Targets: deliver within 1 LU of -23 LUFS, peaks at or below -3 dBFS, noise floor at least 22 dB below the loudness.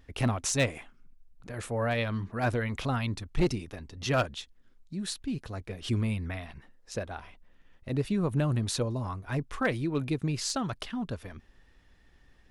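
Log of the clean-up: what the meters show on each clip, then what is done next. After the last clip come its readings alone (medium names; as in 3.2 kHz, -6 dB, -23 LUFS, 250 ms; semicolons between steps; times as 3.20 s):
clipped samples 0.2%; clipping level -19.0 dBFS; loudness -31.5 LUFS; peak level -19.0 dBFS; loudness target -23.0 LUFS
-> clip repair -19 dBFS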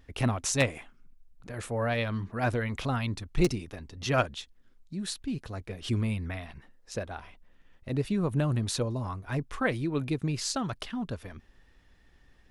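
clipped samples 0.0%; loudness -31.5 LUFS; peak level -10.0 dBFS; loudness target -23.0 LUFS
-> trim +8.5 dB; peak limiter -3 dBFS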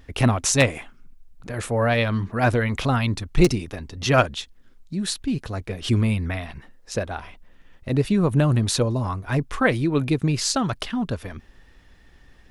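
loudness -23.0 LUFS; peak level -3.0 dBFS; noise floor -53 dBFS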